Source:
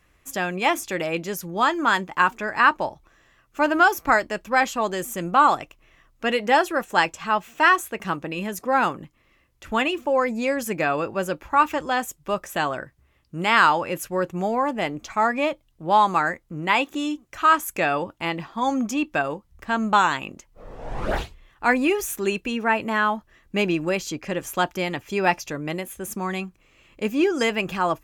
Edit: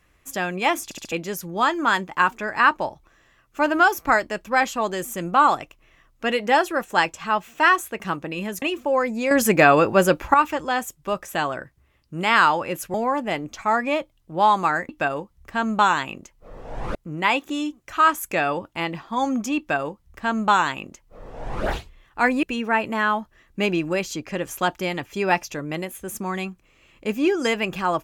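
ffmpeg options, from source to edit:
-filter_complex "[0:a]asplit=12[a][b][c][d][e][f][g][h][i][j][k][l];[a]atrim=end=0.912[m];[b]atrim=start=0.838:end=0.912[n];[c]atrim=start=0.838:end=0.912[o];[d]atrim=start=0.838:end=0.912[p];[e]atrim=start=1.118:end=8.622[q];[f]atrim=start=9.828:end=10.522[r];[g]atrim=start=10.518:end=11.552,asetpts=PTS-STARTPTS,volume=9dB[s];[h]atrim=start=11.548:end=14.152[t];[i]atrim=start=14.448:end=16.402[u];[j]atrim=start=19.028:end=21.092[v];[k]atrim=start=16.398:end=21.882[w];[l]atrim=start=22.388[x];[m][n]acrossfade=d=0.004:c1=hsin:c2=hsin[y];[y][o]acrossfade=d=0.004:c1=hsin:c2=hsin[z];[z][p]acrossfade=d=0.004:c1=hsin:c2=hsin[aa];[aa][q]acrossfade=d=0.004:c1=hsin:c2=hsin[ab];[ab][r]acrossfade=d=0.004:c1=hsin:c2=hsin[ac];[ac][s]acrossfade=d=0.004:c1=hsin:c2=hsin[ad];[ad][t]acrossfade=d=0.004:c1=hsin:c2=hsin[ae];[ae][u]acrossfade=d=0.004:c1=hsin:c2=hsin[af];[af][v]acrossfade=d=0.004:c1=hsin:c2=hsin[ag];[ag][w]acrossfade=d=0.004:c1=hsin:c2=hsin[ah];[ah][x]acrossfade=d=0.004:c1=hsin:c2=hsin"

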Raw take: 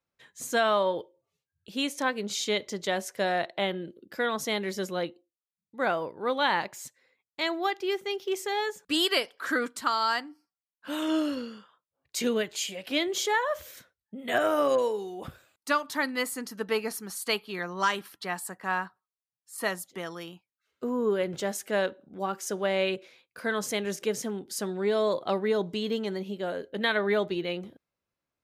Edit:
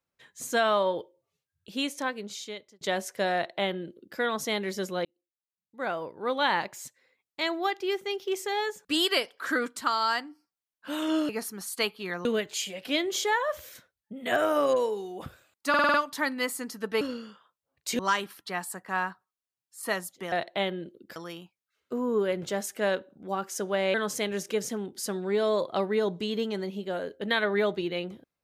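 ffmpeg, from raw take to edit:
-filter_complex "[0:a]asplit=15[a][b][c][d][e][f][g][h][i][j][k][l][m][n][o];[a]atrim=end=2.81,asetpts=PTS-STARTPTS,afade=t=out:st=1.75:d=1.06[p];[b]atrim=start=2.81:end=5.05,asetpts=PTS-STARTPTS,afade=t=in:d=0.004:c=hsin,afade=t=out:st=2.236:d=0.004:c=hsin[q];[c]atrim=start=5.05:end=11.292,asetpts=PTS-STARTPTS,afade=t=in:d=1.37[r];[d]atrim=start=16.778:end=17.742[s];[e]atrim=start=12.268:end=15.762[t];[f]atrim=start=15.708:end=15.762[u];[g]atrim=start=15.708:end=15.762[v];[h]atrim=start=15.708:end=15.762[w];[i]atrim=start=15.708:end=15.762[x];[j]atrim=start=15.708:end=16.782[y];[k]atrim=start=11.288:end=12.272[z];[l]atrim=start=17.738:end=20.072[aa];[m]atrim=start=3.338:end=4.182[ab];[n]atrim=start=20.068:end=22.852[ac];[o]atrim=start=23.468[ad];[p][q][r]concat=n=3:v=0:a=1[ae];[ae][s]acrossfade=d=0.004:c1=hsin:c2=hsin[af];[af][t]acrossfade=d=0.004:c1=hsin:c2=hsin[ag];[ag][u]acrossfade=d=0.004:c1=hsin:c2=hsin[ah];[ah][v]acrossfade=d=0.004:c1=hsin:c2=hsin[ai];[ai][w]acrossfade=d=0.004:c1=hsin:c2=hsin[aj];[aj][x]acrossfade=d=0.004:c1=hsin:c2=hsin[ak];[ak][y]acrossfade=d=0.004:c1=hsin:c2=hsin[al];[al][z]acrossfade=d=0.004:c1=hsin:c2=hsin[am];[am][aa]acrossfade=d=0.004:c1=hsin:c2=hsin[an];[an][ab]acrossfade=d=0.004:c1=hsin:c2=hsin[ao];[ao][ac]acrossfade=d=0.004:c1=hsin:c2=hsin[ap];[ap][ad]acrossfade=d=0.004:c1=hsin:c2=hsin"

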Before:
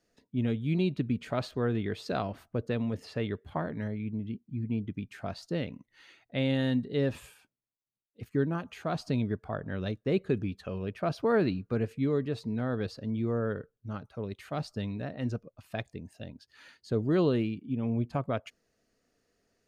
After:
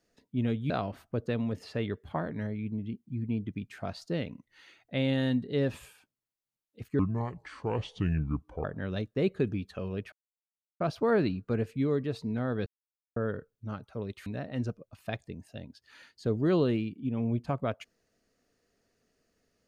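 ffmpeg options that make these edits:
-filter_complex "[0:a]asplit=8[a][b][c][d][e][f][g][h];[a]atrim=end=0.702[i];[b]atrim=start=2.108:end=8.404[j];[c]atrim=start=8.4:end=9.54,asetpts=PTS-STARTPTS,asetrate=30429,aresample=44100[k];[d]atrim=start=9.536:end=11.02,asetpts=PTS-STARTPTS,afade=t=out:st=1.48:d=0.004:c=hsin,apad=pad_dur=0.68[l];[e]atrim=start=11.02:end=12.88,asetpts=PTS-STARTPTS,afade=t=in:d=0.004:c=hsin,afade=t=out:st=1.856:d=0.004:c=hsin[m];[f]atrim=start=12.88:end=13.38,asetpts=PTS-STARTPTS,volume=0[n];[g]atrim=start=13.38:end=14.482,asetpts=PTS-STARTPTS,afade=t=in:d=0.004:c=hsin[o];[h]atrim=start=14.918[p];[i][j]acrossfade=d=0.004:c1=hsin:c2=hsin[q];[q][k]acrossfade=d=0.004:c1=hsin:c2=hsin[r];[l][m][n][o]concat=n=4:v=0:a=1[s];[r][s]acrossfade=d=0.004:c1=hsin:c2=hsin[t];[t][p]acrossfade=d=0.004:c1=hsin:c2=hsin"

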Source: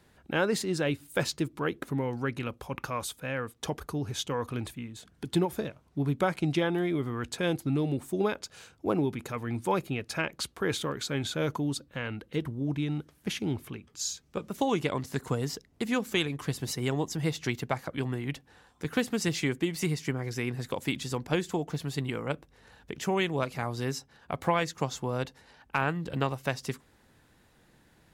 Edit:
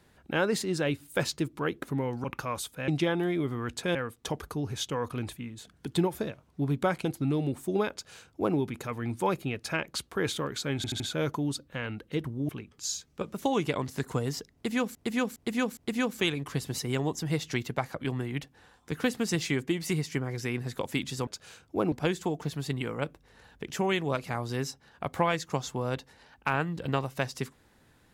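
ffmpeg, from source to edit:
-filter_complex "[0:a]asplit=14[a][b][c][d][e][f][g][h][i][j][k][l][m][n];[a]atrim=end=2.242[o];[b]atrim=start=2.688:end=3.332[p];[c]atrim=start=6.428:end=7.502[q];[d]atrim=start=3.328:end=6.432[r];[e]atrim=start=7.498:end=11.292[s];[f]atrim=start=11.208:end=11.292[t];[g]atrim=start=11.208:end=11.292[u];[h]atrim=start=11.208:end=12.702[v];[i]atrim=start=13.648:end=16.112[w];[j]atrim=start=15.698:end=16.112[x];[k]atrim=start=15.698:end=16.112[y];[l]atrim=start=15.698:end=21.202[z];[m]atrim=start=8.368:end=9.022[aa];[n]atrim=start=21.198[ab];[o][p]acrossfade=d=0.004:c1=hsin:c2=hsin[ac];[ac][q]acrossfade=d=0.004:c1=hsin:c2=hsin[ad];[ad][r]acrossfade=d=0.004:c1=hsin:c2=hsin[ae];[ae][s]acrossfade=d=0.004:c1=hsin:c2=hsin[af];[af][t]acrossfade=d=0.004:c1=hsin:c2=hsin[ag];[ag][u]acrossfade=d=0.004:c1=hsin:c2=hsin[ah];[ah][v]acrossfade=d=0.004:c1=hsin:c2=hsin[ai];[ai][w]acrossfade=d=0.004:c1=hsin:c2=hsin[aj];[aj][x]acrossfade=d=0.004:c1=hsin:c2=hsin[ak];[ak][y]acrossfade=d=0.004:c1=hsin:c2=hsin[al];[al][z]acrossfade=d=0.004:c1=hsin:c2=hsin[am];[am][aa]acrossfade=d=0.004:c1=hsin:c2=hsin[an];[an][ab]acrossfade=d=0.004:c1=hsin:c2=hsin"

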